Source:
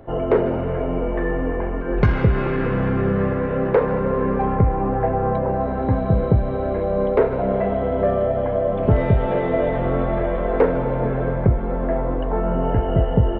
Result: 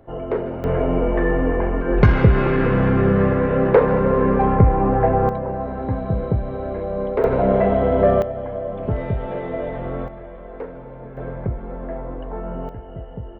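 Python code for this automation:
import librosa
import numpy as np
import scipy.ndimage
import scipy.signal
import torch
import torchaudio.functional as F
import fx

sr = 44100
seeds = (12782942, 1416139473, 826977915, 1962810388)

y = fx.gain(x, sr, db=fx.steps((0.0, -6.0), (0.64, 3.5), (5.29, -4.0), (7.24, 4.0), (8.22, -6.5), (10.08, -15.5), (11.17, -8.0), (12.69, -16.0)))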